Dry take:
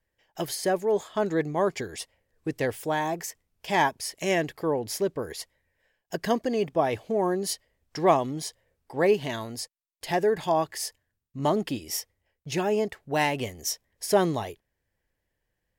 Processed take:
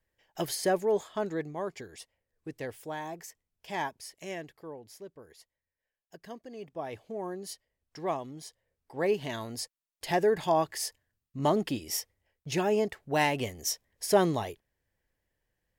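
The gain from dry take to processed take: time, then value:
0.83 s -1.5 dB
1.63 s -10.5 dB
3.95 s -10.5 dB
4.95 s -19 dB
6.44 s -19 dB
6.94 s -11.5 dB
8.42 s -11.5 dB
9.63 s -1.5 dB

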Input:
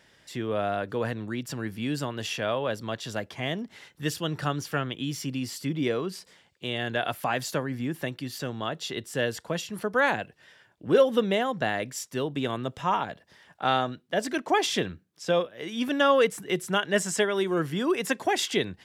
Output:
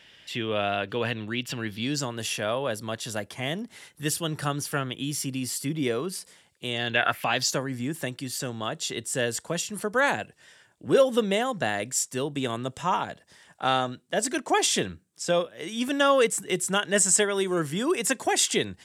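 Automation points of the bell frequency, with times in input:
bell +13.5 dB 0.88 oct
1.65 s 2900 Hz
2.19 s 9800 Hz
6.67 s 9800 Hz
7.07 s 1500 Hz
7.58 s 8300 Hz

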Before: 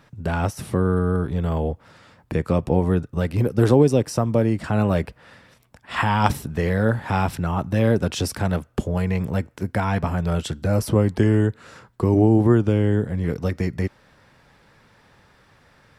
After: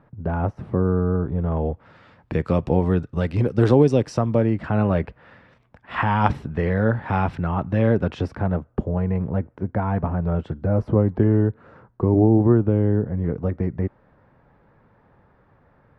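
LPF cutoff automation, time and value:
1.43 s 1100 Hz
1.71 s 2200 Hz
2.52 s 4500 Hz
4.11 s 4500 Hz
4.59 s 2300 Hz
8 s 2300 Hz
8.57 s 1100 Hz

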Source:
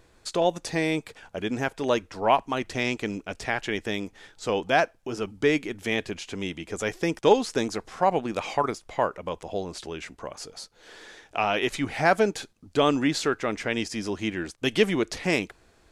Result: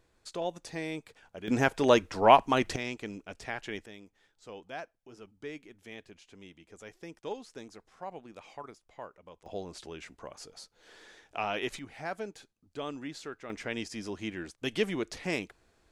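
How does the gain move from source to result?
-11 dB
from 1.48 s +2 dB
from 2.76 s -9.5 dB
from 3.86 s -19.5 dB
from 9.46 s -8 dB
from 11.79 s -16.5 dB
from 13.5 s -8 dB

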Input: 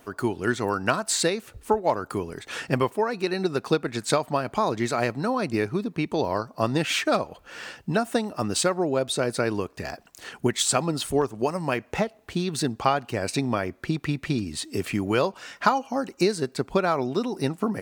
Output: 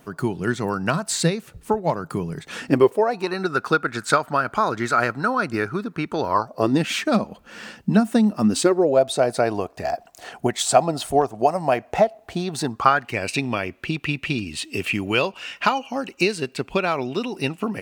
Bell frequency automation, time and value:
bell +15 dB 0.5 oct
2.46 s 160 Hz
3.42 s 1400 Hz
6.28 s 1400 Hz
6.81 s 210 Hz
8.46 s 210 Hz
9.02 s 700 Hz
12.53 s 700 Hz
13.23 s 2700 Hz

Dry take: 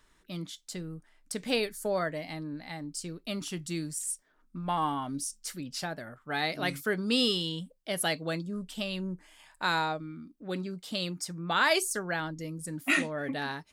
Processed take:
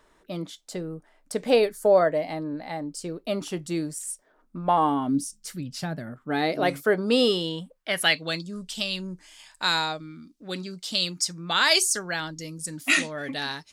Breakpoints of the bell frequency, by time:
bell +13 dB 2 oct
4.75 s 580 Hz
5.68 s 83 Hz
6.74 s 630 Hz
7.46 s 630 Hz
8.46 s 5500 Hz

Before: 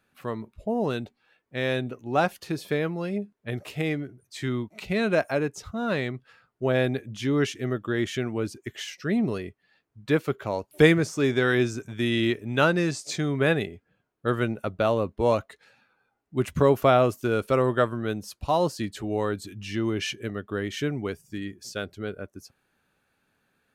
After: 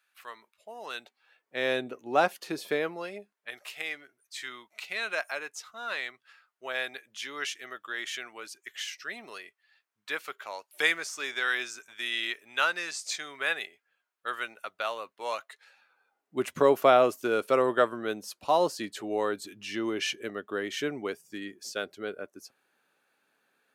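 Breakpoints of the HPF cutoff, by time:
0.8 s 1400 Hz
1.69 s 350 Hz
2.7 s 350 Hz
3.55 s 1200 Hz
15.37 s 1200 Hz
16.36 s 350 Hz

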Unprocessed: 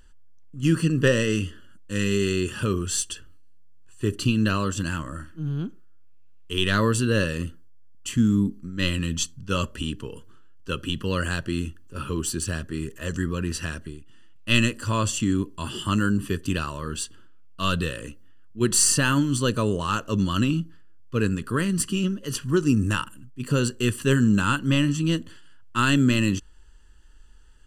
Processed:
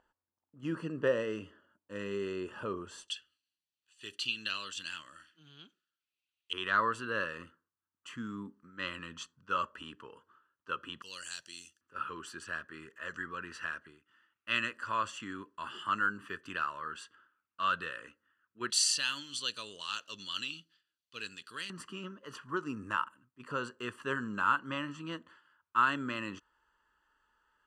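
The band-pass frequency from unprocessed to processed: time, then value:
band-pass, Q 2.1
790 Hz
from 3.08 s 3400 Hz
from 6.53 s 1200 Hz
from 11.02 s 5900 Hz
from 11.81 s 1400 Hz
from 18.7 s 3800 Hz
from 21.7 s 1100 Hz

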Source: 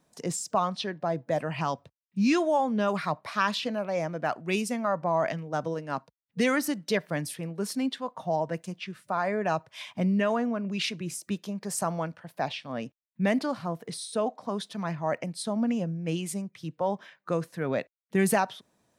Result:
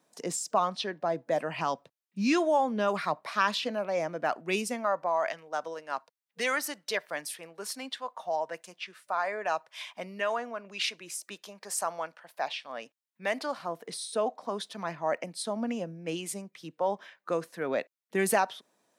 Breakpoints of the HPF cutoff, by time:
4.66 s 260 Hz
5.17 s 640 Hz
13.25 s 640 Hz
13.9 s 310 Hz

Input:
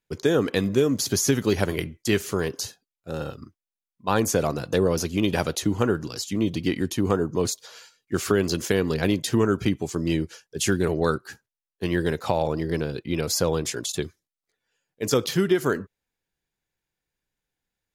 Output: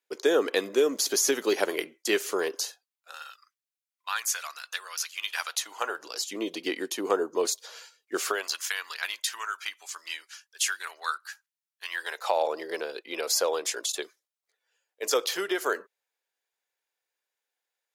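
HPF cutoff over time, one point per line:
HPF 24 dB/oct
2.52 s 360 Hz
3.24 s 1300 Hz
5.28 s 1300 Hz
6.33 s 380 Hz
8.19 s 380 Hz
8.6 s 1100 Hz
11.87 s 1100 Hz
12.41 s 470 Hz

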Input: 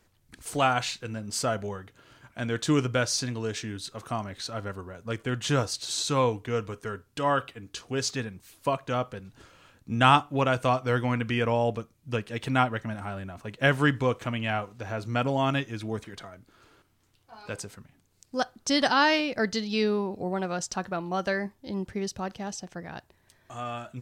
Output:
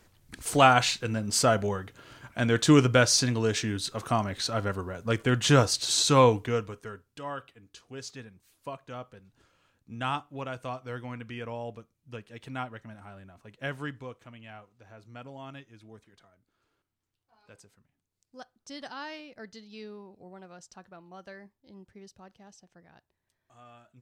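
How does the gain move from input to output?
6.38 s +5 dB
6.68 s -3 dB
7.29 s -12 dB
13.75 s -12 dB
14.22 s -18 dB

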